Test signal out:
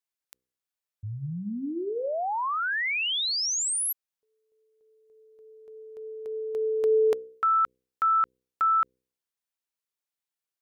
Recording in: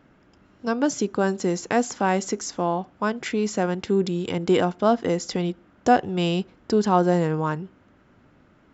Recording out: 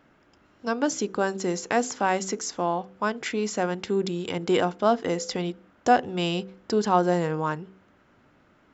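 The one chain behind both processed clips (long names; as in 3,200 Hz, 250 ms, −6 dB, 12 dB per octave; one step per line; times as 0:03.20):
low-shelf EQ 320 Hz −6.5 dB
hum removal 63.51 Hz, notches 8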